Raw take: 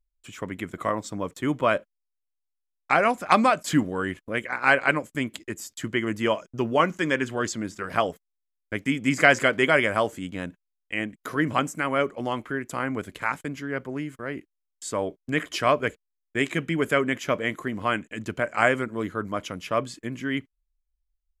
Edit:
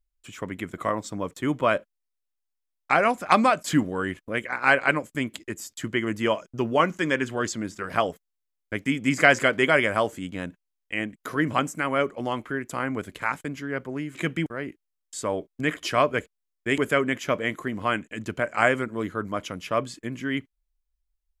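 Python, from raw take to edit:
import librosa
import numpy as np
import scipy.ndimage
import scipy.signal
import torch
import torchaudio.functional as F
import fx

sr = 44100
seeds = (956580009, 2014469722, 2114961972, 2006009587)

y = fx.edit(x, sr, fx.move(start_s=16.47, length_s=0.31, to_s=14.15), tone=tone)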